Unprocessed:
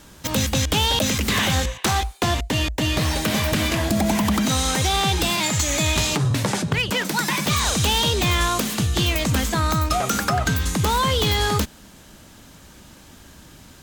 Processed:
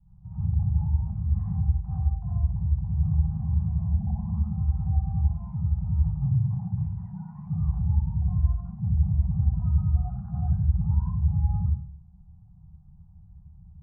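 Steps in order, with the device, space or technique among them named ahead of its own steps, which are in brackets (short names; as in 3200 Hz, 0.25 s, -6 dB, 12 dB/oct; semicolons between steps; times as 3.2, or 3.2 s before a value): next room (LPF 420 Hz 24 dB/oct; reverb RT60 0.50 s, pre-delay 55 ms, DRR -6.5 dB); Chebyshev band-stop 180–750 Hz, order 5; gain -6 dB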